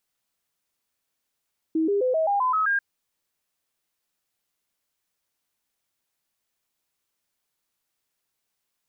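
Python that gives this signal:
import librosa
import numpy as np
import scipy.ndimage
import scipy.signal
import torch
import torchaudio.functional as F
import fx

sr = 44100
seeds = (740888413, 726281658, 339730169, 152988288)

y = fx.stepped_sweep(sr, from_hz=320.0, direction='up', per_octave=3, tones=8, dwell_s=0.13, gap_s=0.0, level_db=-19.5)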